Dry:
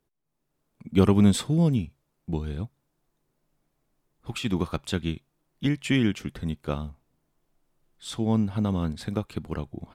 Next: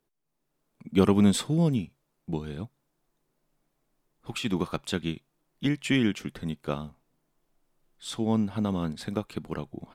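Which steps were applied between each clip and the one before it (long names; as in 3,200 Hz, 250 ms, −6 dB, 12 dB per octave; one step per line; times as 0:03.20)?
parametric band 67 Hz −12.5 dB 1.3 octaves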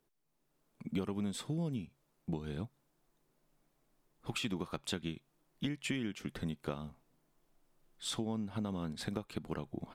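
downward compressor 8 to 1, threshold −34 dBFS, peak gain reduction 18.5 dB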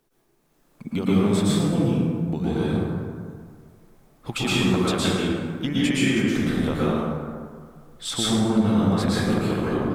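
dense smooth reverb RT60 2 s, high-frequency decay 0.45×, pre-delay 100 ms, DRR −8.5 dB
level +8.5 dB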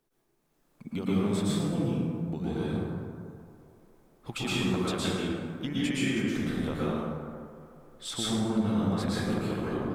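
delay with a band-pass on its return 227 ms, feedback 73%, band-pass 680 Hz, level −18 dB
level −7.5 dB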